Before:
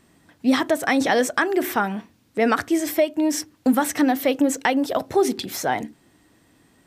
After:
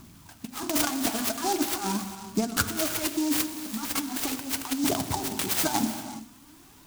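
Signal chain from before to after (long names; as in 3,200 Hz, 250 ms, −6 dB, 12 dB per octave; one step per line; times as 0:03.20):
high-shelf EQ 4,400 Hz +11 dB
phaser with its sweep stopped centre 1,900 Hz, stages 6
compressor whose output falls as the input rises −29 dBFS, ratio −0.5
hum removal 47.23 Hz, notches 5
phase shifter 0.41 Hz, delay 4.9 ms, feedback 63%
reverb whose tail is shaped and stops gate 430 ms flat, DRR 8 dB
short delay modulated by noise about 5,700 Hz, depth 0.09 ms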